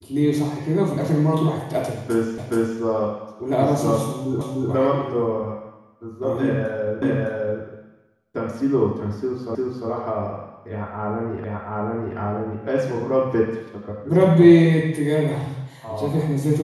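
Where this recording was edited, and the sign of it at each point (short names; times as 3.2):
2.38 repeat of the last 0.42 s
4.41 repeat of the last 0.3 s
7.02 repeat of the last 0.61 s
9.55 repeat of the last 0.35 s
11.44 repeat of the last 0.73 s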